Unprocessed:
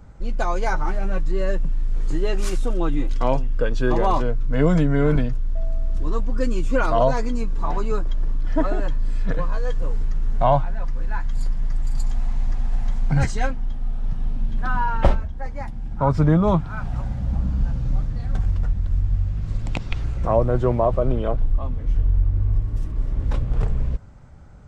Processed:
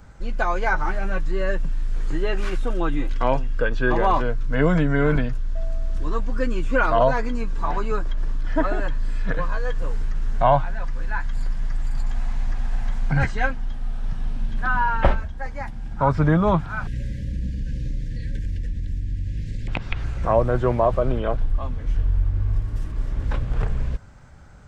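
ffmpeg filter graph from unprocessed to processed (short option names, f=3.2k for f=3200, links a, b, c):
-filter_complex "[0:a]asettb=1/sr,asplit=3[a][b][c];[a]atrim=end=16.874[d];[b]atrim=start=16.87:end=19.68,asetpts=PTS-STARTPTS,afade=t=in:d=0.004:c=qsin,afade=t=out:st=2.806:d=0.004:c=qsin,acompressor=threshold=-21dB:ratio=3:attack=3.2:release=140:knee=1:detection=peak,aeval=exprs='val(0)+0.0158*(sin(2*PI*60*n/s)+sin(2*PI*2*60*n/s)/2+sin(2*PI*3*60*n/s)/3+sin(2*PI*4*60*n/s)/4+sin(2*PI*5*60*n/s)/5)':c=same,asuperstop=centerf=960:order=20:qfactor=0.89[e];[c]atrim=start=19.676[f];[d][e]acrossfade=d=0.004:c1=hsin:c2=qsin[g];[g][f]acrossfade=d=0.004:c1=qsin:c2=hsin,tiltshelf=f=970:g=-4,acrossover=split=3100[h][i];[i]acompressor=threshold=-55dB:ratio=4:attack=1:release=60[j];[h][j]amix=inputs=2:normalize=0,equalizer=f=1.6k:w=6.8:g=4.5,volume=2dB"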